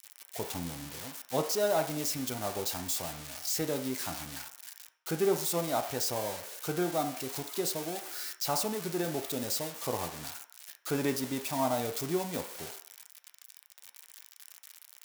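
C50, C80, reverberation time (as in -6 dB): 10.5 dB, 14.5 dB, 0.60 s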